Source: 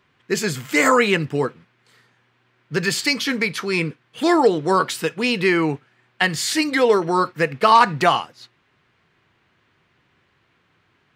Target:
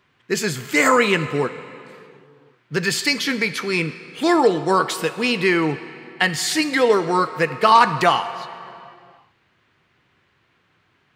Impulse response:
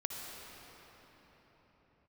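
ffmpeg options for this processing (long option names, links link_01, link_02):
-filter_complex "[0:a]asplit=2[link_01][link_02];[1:a]atrim=start_sample=2205,asetrate=79380,aresample=44100,lowshelf=frequency=420:gain=-8.5[link_03];[link_02][link_03]afir=irnorm=-1:irlink=0,volume=-4.5dB[link_04];[link_01][link_04]amix=inputs=2:normalize=0,volume=-1.5dB"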